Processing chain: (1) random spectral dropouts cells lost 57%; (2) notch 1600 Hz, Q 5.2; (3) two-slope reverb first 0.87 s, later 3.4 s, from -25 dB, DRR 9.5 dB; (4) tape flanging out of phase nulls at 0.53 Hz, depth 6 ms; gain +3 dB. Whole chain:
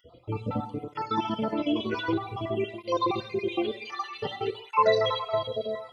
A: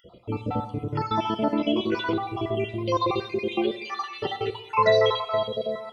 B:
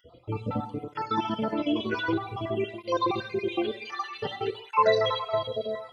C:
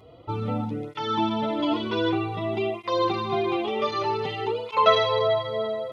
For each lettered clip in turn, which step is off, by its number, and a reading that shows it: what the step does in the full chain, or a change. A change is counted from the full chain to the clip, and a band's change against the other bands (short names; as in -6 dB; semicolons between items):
4, loudness change +3.0 LU; 2, 2 kHz band +2.0 dB; 1, crest factor change +2.5 dB